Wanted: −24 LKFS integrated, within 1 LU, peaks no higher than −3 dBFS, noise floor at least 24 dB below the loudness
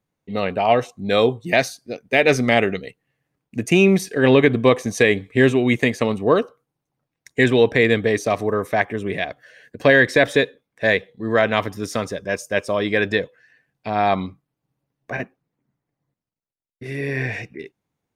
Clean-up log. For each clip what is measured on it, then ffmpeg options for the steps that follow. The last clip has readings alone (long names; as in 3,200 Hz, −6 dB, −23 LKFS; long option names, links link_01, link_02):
integrated loudness −19.0 LKFS; sample peak −1.5 dBFS; target loudness −24.0 LKFS
→ -af "volume=-5dB"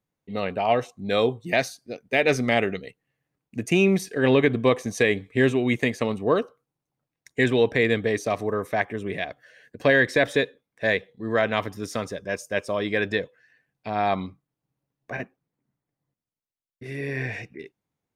integrated loudness −24.0 LKFS; sample peak −6.5 dBFS; background noise floor −87 dBFS